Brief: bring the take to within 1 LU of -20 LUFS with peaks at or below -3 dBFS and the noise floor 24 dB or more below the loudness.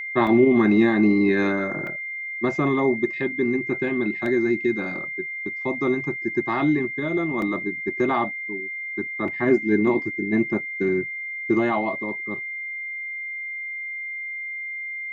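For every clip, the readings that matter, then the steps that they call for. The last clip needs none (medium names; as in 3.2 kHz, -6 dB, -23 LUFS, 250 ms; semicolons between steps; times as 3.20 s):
dropouts 5; longest dropout 2.1 ms; steady tone 2.1 kHz; tone level -29 dBFS; loudness -23.5 LUFS; peak level -6.5 dBFS; loudness target -20.0 LUFS
-> interpolate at 0.27/1.87/4.26/7.42/9.28 s, 2.1 ms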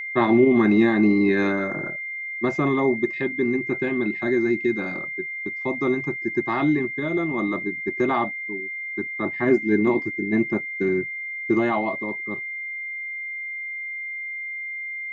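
dropouts 0; steady tone 2.1 kHz; tone level -29 dBFS
-> band-stop 2.1 kHz, Q 30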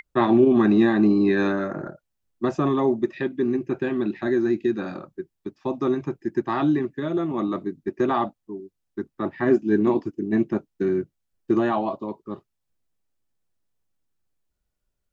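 steady tone not found; loudness -23.0 LUFS; peak level -7.0 dBFS; loudness target -20.0 LUFS
-> trim +3 dB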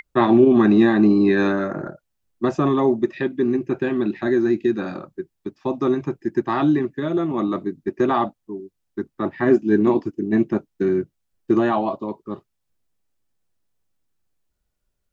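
loudness -20.0 LUFS; peak level -4.0 dBFS; noise floor -76 dBFS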